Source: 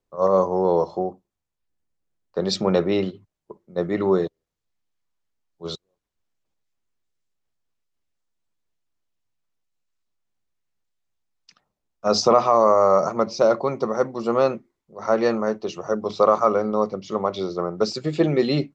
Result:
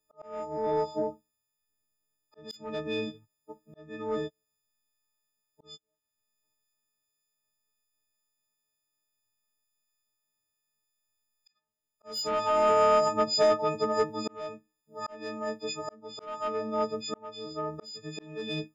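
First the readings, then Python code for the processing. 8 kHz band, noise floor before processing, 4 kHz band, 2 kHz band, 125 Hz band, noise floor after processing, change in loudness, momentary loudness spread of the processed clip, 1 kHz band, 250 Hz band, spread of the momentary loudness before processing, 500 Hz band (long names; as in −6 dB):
can't be measured, −83 dBFS, −4.5 dB, −5.0 dB, −14.0 dB, −83 dBFS, −8.5 dB, 17 LU, −7.5 dB, −13.0 dB, 14 LU, −9.5 dB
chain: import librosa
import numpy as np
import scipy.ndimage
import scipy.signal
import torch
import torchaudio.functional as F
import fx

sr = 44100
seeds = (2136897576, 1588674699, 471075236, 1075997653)

y = fx.freq_snap(x, sr, grid_st=6)
y = 10.0 ** (-9.0 / 20.0) * np.tanh(y / 10.0 ** (-9.0 / 20.0))
y = fx.auto_swell(y, sr, attack_ms=787.0)
y = y * librosa.db_to_amplitude(-6.0)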